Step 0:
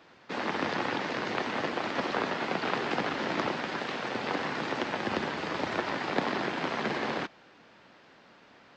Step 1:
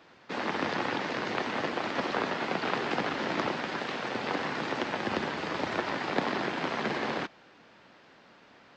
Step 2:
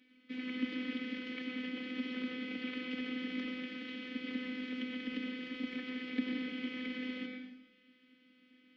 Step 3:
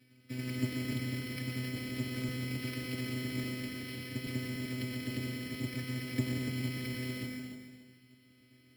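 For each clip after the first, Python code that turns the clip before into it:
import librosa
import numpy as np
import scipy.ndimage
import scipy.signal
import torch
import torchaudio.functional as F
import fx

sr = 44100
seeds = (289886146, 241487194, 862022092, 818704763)

y1 = x
y2 = fx.vowel_filter(y1, sr, vowel='i')
y2 = fx.robotise(y2, sr, hz=254.0)
y2 = fx.rev_plate(y2, sr, seeds[0], rt60_s=1.0, hf_ratio=0.95, predelay_ms=90, drr_db=3.0)
y2 = y2 * 10.0 ** (5.0 / 20.0)
y3 = fx.octave_divider(y2, sr, octaves=1, level_db=2.0)
y3 = fx.echo_feedback(y3, sr, ms=289, feedback_pct=25, wet_db=-9.0)
y3 = np.repeat(scipy.signal.resample_poly(y3, 1, 6), 6)[:len(y3)]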